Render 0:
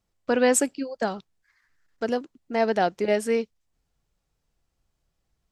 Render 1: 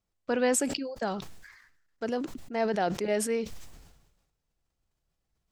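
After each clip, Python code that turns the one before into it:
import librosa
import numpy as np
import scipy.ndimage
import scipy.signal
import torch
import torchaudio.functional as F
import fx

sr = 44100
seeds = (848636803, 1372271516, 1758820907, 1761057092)

y = fx.sustainer(x, sr, db_per_s=53.0)
y = F.gain(torch.from_numpy(y), -6.0).numpy()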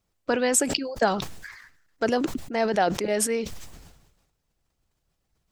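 y = fx.hpss(x, sr, part='harmonic', gain_db=-6)
y = fx.rider(y, sr, range_db=3, speed_s=0.5)
y = F.gain(torch.from_numpy(y), 9.0).numpy()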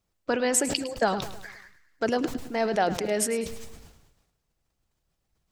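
y = fx.echo_feedback(x, sr, ms=105, feedback_pct=48, wet_db=-14.0)
y = F.gain(torch.from_numpy(y), -2.0).numpy()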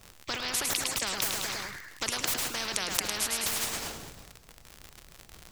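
y = fx.dmg_crackle(x, sr, seeds[0], per_s=79.0, level_db=-51.0)
y = fx.spectral_comp(y, sr, ratio=10.0)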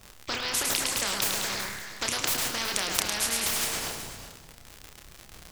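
y = fx.doubler(x, sr, ms=30.0, db=-6)
y = y + 10.0 ** (-12.0 / 20.0) * np.pad(y, (int(374 * sr / 1000.0), 0))[:len(y)]
y = F.gain(torch.from_numpy(y), 1.5).numpy()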